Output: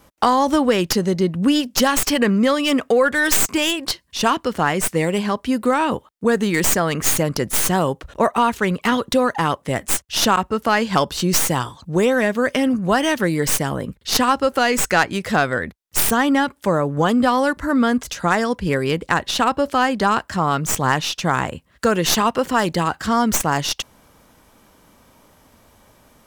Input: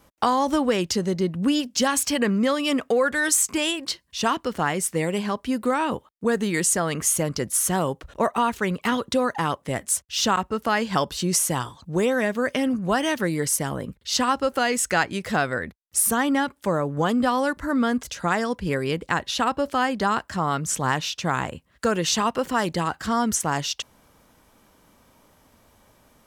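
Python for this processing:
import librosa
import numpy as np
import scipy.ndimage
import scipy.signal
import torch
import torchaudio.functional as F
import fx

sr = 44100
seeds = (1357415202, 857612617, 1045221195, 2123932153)

y = fx.tracing_dist(x, sr, depth_ms=0.082)
y = F.gain(torch.from_numpy(y), 5.0).numpy()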